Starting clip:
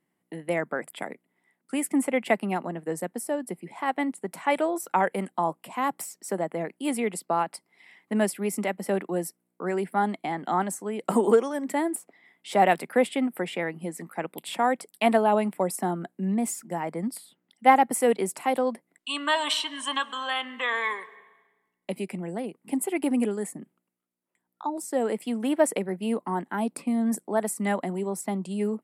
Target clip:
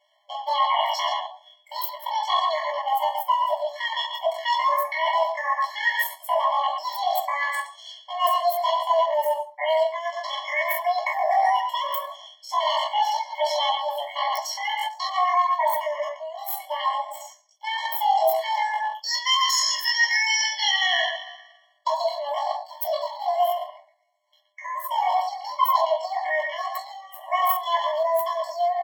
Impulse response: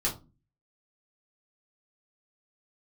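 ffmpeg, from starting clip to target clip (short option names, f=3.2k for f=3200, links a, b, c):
-filter_complex "[0:a]asplit=2[a][b];[b]adelay=120,highpass=300,lowpass=3.4k,asoftclip=type=hard:threshold=-12.5dB,volume=-8dB[c];[a][c]amix=inputs=2:normalize=0[d];[1:a]atrim=start_sample=2205,asetrate=31752,aresample=44100[e];[d][e]afir=irnorm=-1:irlink=0,acrossover=split=6100[f][g];[g]acrusher=bits=3:mix=0:aa=0.5[h];[f][h]amix=inputs=2:normalize=0,asetrate=74167,aresample=44100,atempo=0.594604,areverse,acompressor=threshold=-26dB:ratio=5,areverse,afftfilt=real='re*eq(mod(floor(b*sr/1024/570),2),1)':imag='im*eq(mod(floor(b*sr/1024/570),2),1)':win_size=1024:overlap=0.75,volume=8.5dB"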